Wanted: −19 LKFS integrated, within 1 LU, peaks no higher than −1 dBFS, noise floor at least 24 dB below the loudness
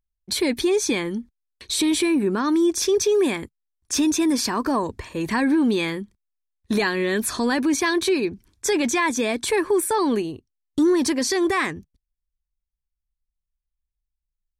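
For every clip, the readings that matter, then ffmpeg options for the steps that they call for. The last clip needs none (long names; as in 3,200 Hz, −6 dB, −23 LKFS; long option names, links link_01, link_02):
integrated loudness −22.0 LKFS; sample peak −12.0 dBFS; target loudness −19.0 LKFS
→ -af "volume=3dB"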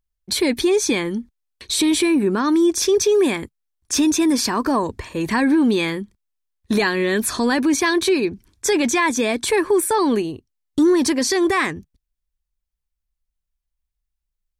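integrated loudness −19.0 LKFS; sample peak −9.0 dBFS; background noise floor −80 dBFS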